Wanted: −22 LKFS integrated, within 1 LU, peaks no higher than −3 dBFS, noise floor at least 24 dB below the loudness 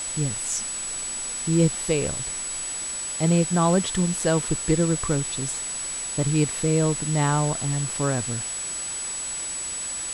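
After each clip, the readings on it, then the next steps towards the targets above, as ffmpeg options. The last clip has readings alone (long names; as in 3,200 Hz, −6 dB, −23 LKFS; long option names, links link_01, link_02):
interfering tone 7,900 Hz; level of the tone −29 dBFS; background noise floor −31 dBFS; target noise floor −48 dBFS; integrated loudness −24.0 LKFS; sample peak −8.0 dBFS; target loudness −22.0 LKFS
→ -af "bandreject=frequency=7900:width=30"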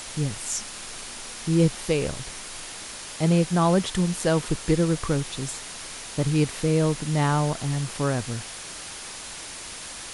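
interfering tone none found; background noise floor −38 dBFS; target noise floor −50 dBFS
→ -af "afftdn=noise_reduction=12:noise_floor=-38"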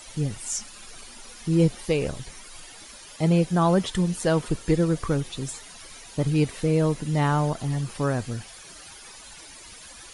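background noise floor −45 dBFS; target noise floor −49 dBFS
→ -af "afftdn=noise_reduction=6:noise_floor=-45"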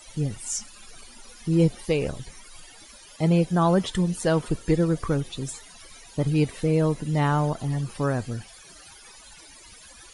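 background noise floor −49 dBFS; integrated loudness −25.0 LKFS; sample peak −9.0 dBFS; target loudness −22.0 LKFS
→ -af "volume=3dB"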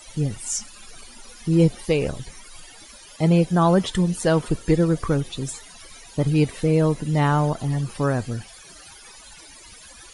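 integrated loudness −22.0 LKFS; sample peak −6.0 dBFS; background noise floor −46 dBFS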